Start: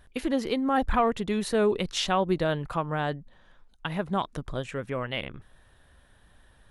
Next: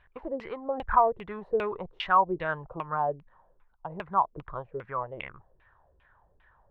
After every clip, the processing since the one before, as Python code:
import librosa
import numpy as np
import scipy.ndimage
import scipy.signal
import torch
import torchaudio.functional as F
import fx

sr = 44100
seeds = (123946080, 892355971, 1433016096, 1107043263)

y = fx.filter_lfo_lowpass(x, sr, shape='saw_down', hz=2.5, low_hz=330.0, high_hz=2700.0, q=4.1)
y = fx.graphic_eq_15(y, sr, hz=(250, 1000, 6300), db=(-10, 7, -3))
y = F.gain(torch.from_numpy(y), -8.0).numpy()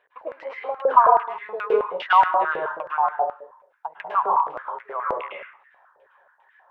y = fx.rev_plate(x, sr, seeds[0], rt60_s=0.52, hf_ratio=0.8, predelay_ms=95, drr_db=-3.0)
y = fx.filter_held_highpass(y, sr, hz=9.4, low_hz=470.0, high_hz=1900.0)
y = F.gain(torch.from_numpy(y), -2.5).numpy()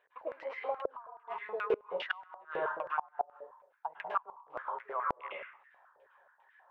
y = fx.gate_flip(x, sr, shuts_db=-12.0, range_db=-29)
y = F.gain(torch.from_numpy(y), -6.5).numpy()